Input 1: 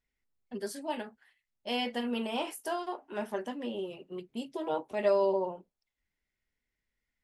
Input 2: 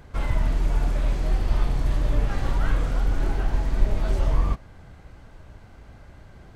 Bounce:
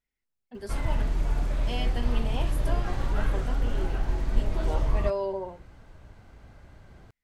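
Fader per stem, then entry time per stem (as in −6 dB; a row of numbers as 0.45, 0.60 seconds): −3.0, −4.0 decibels; 0.00, 0.55 seconds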